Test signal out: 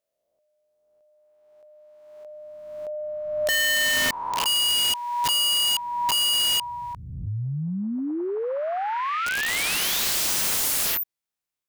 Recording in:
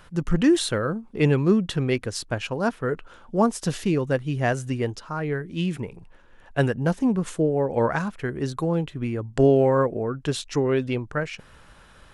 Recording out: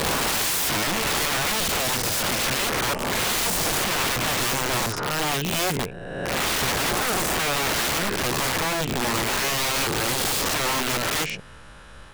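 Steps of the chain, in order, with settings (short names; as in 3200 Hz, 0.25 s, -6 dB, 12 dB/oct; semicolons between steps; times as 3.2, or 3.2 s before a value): spectral swells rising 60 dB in 1.51 s; wrapped overs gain 21.5 dB; gain +2.5 dB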